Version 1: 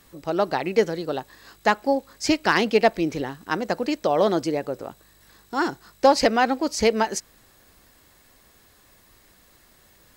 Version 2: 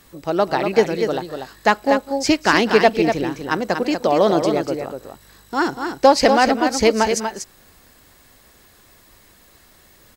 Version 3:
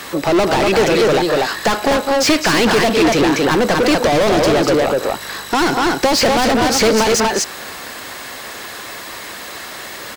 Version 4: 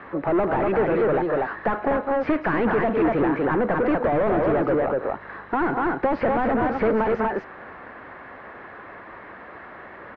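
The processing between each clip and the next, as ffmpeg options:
-af "aecho=1:1:201|241:0.112|0.473,volume=1.58"
-filter_complex "[0:a]asplit=2[s0][s1];[s1]highpass=f=720:p=1,volume=56.2,asoftclip=type=tanh:threshold=0.841[s2];[s0][s2]amix=inputs=2:normalize=0,lowpass=f=3600:p=1,volume=0.501,acrossover=split=420|3000[s3][s4][s5];[s4]acompressor=threshold=0.224:ratio=6[s6];[s3][s6][s5]amix=inputs=3:normalize=0,volume=0.75"
-af "lowpass=f=1800:w=0.5412,lowpass=f=1800:w=1.3066,volume=0.447"

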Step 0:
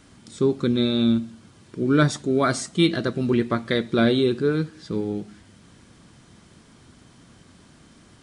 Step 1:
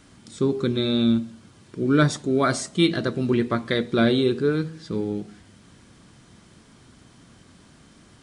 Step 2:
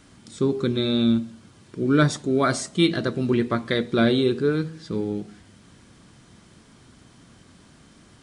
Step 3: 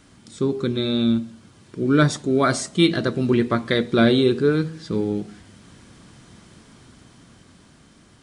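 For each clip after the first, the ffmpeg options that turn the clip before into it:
-af "bandreject=f=80.69:t=h:w=4,bandreject=f=161.38:t=h:w=4,bandreject=f=242.07:t=h:w=4,bandreject=f=322.76:t=h:w=4,bandreject=f=403.45:t=h:w=4,bandreject=f=484.14:t=h:w=4,bandreject=f=564.83:t=h:w=4,bandreject=f=645.52:t=h:w=4,bandreject=f=726.21:t=h:w=4,bandreject=f=806.9:t=h:w=4,bandreject=f=887.59:t=h:w=4,bandreject=f=968.28:t=h:w=4,bandreject=f=1048.97:t=h:w=4"
-af anull
-af "dynaudnorm=f=520:g=7:m=1.78"

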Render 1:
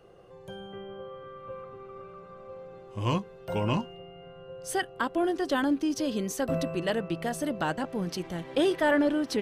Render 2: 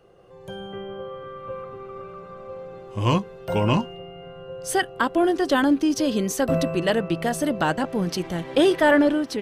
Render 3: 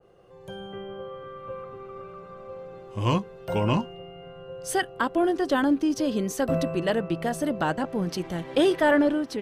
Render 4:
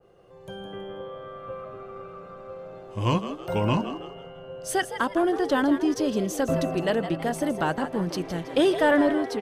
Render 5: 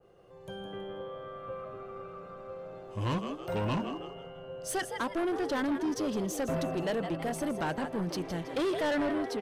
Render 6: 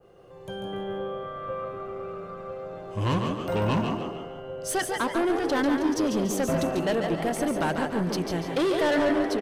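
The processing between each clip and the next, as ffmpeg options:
-af "dynaudnorm=f=160:g=5:m=2.24"
-af "adynamicequalizer=threshold=0.0141:dfrequency=1800:dqfactor=0.7:tfrequency=1800:tqfactor=0.7:attack=5:release=100:ratio=0.375:range=2:mode=cutabove:tftype=highshelf,volume=0.708"
-filter_complex "[0:a]asplit=5[s0][s1][s2][s3][s4];[s1]adelay=162,afreqshift=100,volume=0.282[s5];[s2]adelay=324,afreqshift=200,volume=0.107[s6];[s3]adelay=486,afreqshift=300,volume=0.0407[s7];[s4]adelay=648,afreqshift=400,volume=0.0155[s8];[s0][s5][s6][s7][s8]amix=inputs=5:normalize=0"
-af "asoftclip=type=tanh:threshold=0.0668,volume=0.708"
-af "aecho=1:1:143|286|429|572:0.473|0.18|0.0683|0.026,volume=1.88"

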